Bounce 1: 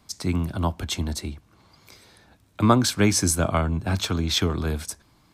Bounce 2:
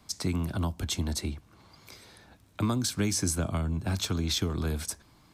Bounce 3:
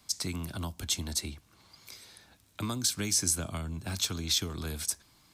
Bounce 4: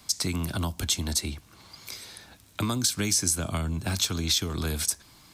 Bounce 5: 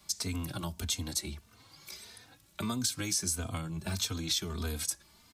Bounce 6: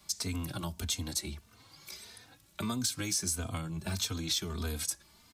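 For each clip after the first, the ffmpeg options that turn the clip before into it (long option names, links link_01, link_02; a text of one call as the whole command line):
ffmpeg -i in.wav -filter_complex "[0:a]acrossover=split=330|4300[link_01][link_02][link_03];[link_01]acompressor=threshold=-27dB:ratio=4[link_04];[link_02]acompressor=threshold=-37dB:ratio=4[link_05];[link_03]acompressor=threshold=-30dB:ratio=4[link_06];[link_04][link_05][link_06]amix=inputs=3:normalize=0" out.wav
ffmpeg -i in.wav -af "highshelf=frequency=2100:gain=11.5,volume=-7dB" out.wav
ffmpeg -i in.wav -af "acompressor=threshold=-34dB:ratio=2,volume=8.5dB" out.wav
ffmpeg -i in.wav -filter_complex "[0:a]asplit=2[link_01][link_02];[link_02]adelay=3.1,afreqshift=1.6[link_03];[link_01][link_03]amix=inputs=2:normalize=1,volume=-3.5dB" out.wav
ffmpeg -i in.wav -af "asoftclip=type=tanh:threshold=-18.5dB" out.wav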